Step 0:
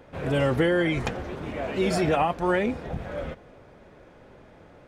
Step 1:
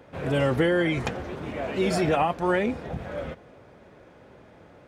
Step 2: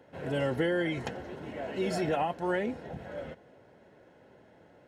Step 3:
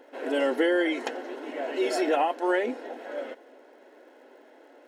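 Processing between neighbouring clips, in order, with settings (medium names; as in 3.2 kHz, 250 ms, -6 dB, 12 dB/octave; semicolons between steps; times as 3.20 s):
high-pass 61 Hz
comb of notches 1.2 kHz; trim -6 dB
brick-wall FIR high-pass 240 Hz; crackle 140 per s -65 dBFS; trim +5.5 dB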